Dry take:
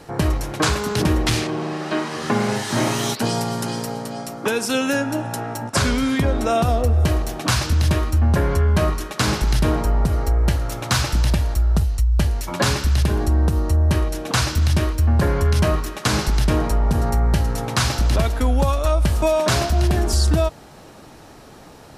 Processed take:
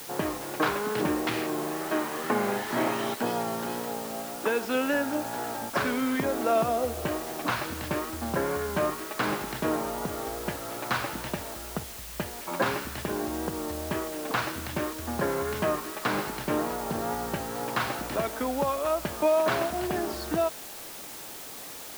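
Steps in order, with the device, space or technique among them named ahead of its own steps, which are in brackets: wax cylinder (band-pass 270–2300 Hz; wow and flutter; white noise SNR 12 dB); trim -4 dB

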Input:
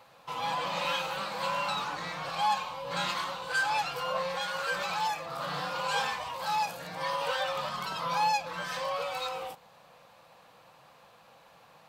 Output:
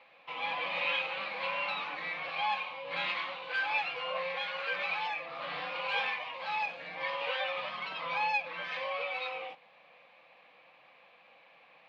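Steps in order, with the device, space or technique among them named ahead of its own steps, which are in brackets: phone earpiece (cabinet simulation 340–3400 Hz, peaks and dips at 410 Hz -7 dB, 640 Hz -3 dB, 930 Hz -7 dB, 1.4 kHz -8 dB, 2.3 kHz +9 dB)

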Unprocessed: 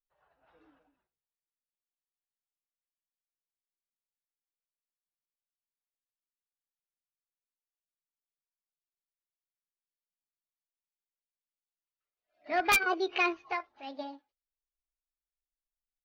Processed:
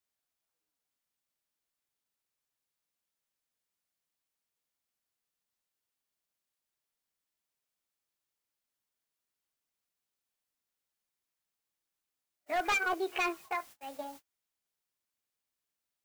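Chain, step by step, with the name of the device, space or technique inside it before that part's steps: aircraft radio (band-pass 350–2600 Hz; hard clipper -26 dBFS, distortion -12 dB; white noise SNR 13 dB; gate -49 dBFS, range -32 dB)

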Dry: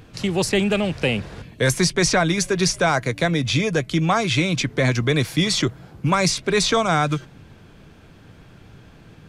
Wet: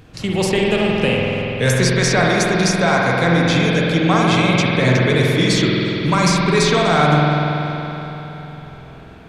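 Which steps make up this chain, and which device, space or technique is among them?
dub delay into a spring reverb (filtered feedback delay 351 ms, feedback 76%, low-pass 4.8 kHz, level -23 dB; spring tank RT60 3.5 s, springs 47 ms, chirp 30 ms, DRR -3.5 dB)

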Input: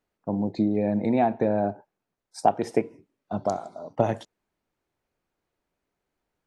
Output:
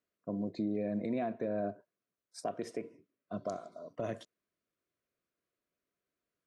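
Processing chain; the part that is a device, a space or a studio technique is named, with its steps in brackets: 2.44–3.72 s: level-controlled noise filter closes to 2.8 kHz, open at -21.5 dBFS; PA system with an anti-feedback notch (high-pass 150 Hz 6 dB/octave; Butterworth band-stop 840 Hz, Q 3; peak limiter -18.5 dBFS, peak gain reduction 9.5 dB); trim -7.5 dB

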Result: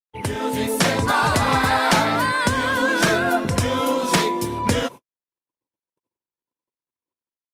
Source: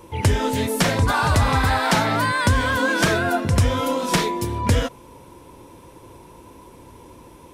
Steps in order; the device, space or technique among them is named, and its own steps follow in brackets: video call (high-pass 150 Hz 12 dB/octave; level rider gain up to 8 dB; gate -30 dBFS, range -60 dB; trim -3 dB; Opus 32 kbps 48 kHz)

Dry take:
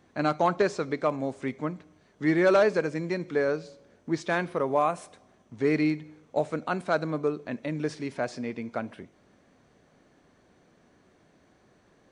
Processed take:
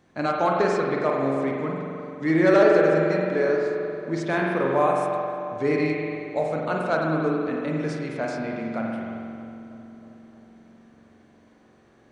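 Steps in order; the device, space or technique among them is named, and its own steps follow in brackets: dub delay into a spring reverb (filtered feedback delay 317 ms, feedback 70%, low-pass 1.9 kHz, level -15 dB; spring tank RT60 2.3 s, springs 44 ms, chirp 60 ms, DRR -1.5 dB)

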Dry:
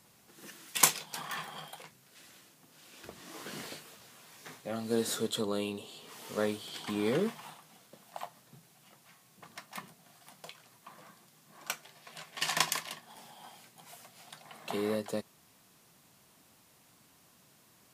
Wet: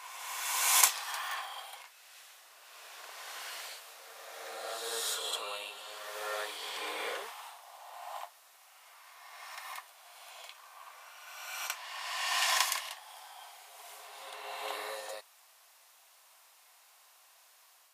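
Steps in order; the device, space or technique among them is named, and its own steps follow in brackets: ghost voice (reverse; reverberation RT60 2.4 s, pre-delay 29 ms, DRR -3.5 dB; reverse; high-pass 690 Hz 24 dB/octave); trim -1.5 dB

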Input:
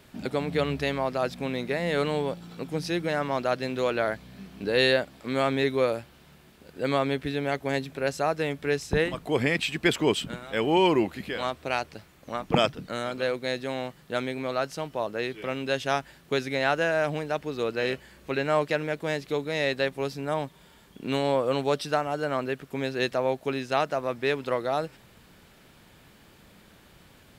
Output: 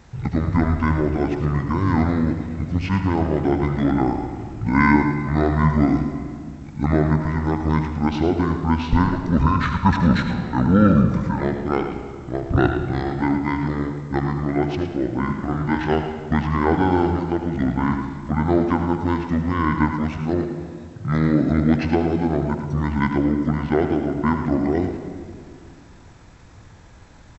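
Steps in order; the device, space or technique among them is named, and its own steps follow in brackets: 15.23–15.94 s: doubling 34 ms -7.5 dB; 20.17–21.48 s: steep high-pass 150 Hz 48 dB/octave; monster voice (pitch shift -10 st; formant shift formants -2 st; bass shelf 110 Hz +7.5 dB; delay 109 ms -10.5 dB; reverberation RT60 2.1 s, pre-delay 76 ms, DRR 9 dB); delay 77 ms -12.5 dB; trim +5 dB

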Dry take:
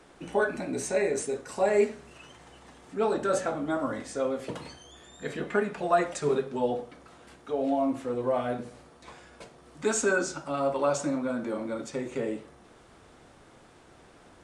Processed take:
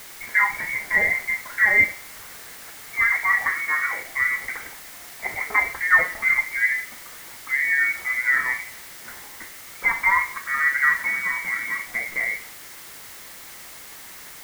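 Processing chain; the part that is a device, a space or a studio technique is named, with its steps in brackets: scrambled radio voice (band-pass 300–2900 Hz; frequency inversion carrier 2.5 kHz; white noise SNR 17 dB); trim +7 dB

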